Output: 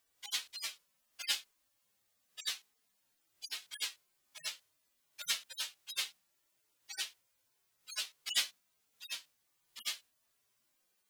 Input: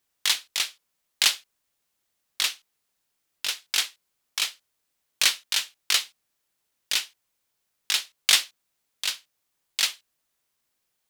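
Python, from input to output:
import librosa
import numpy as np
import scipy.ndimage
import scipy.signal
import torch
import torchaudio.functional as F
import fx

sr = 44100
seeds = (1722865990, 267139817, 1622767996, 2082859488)

y = fx.hpss_only(x, sr, part='harmonic')
y = F.gain(torch.from_numpy(y), 3.5).numpy()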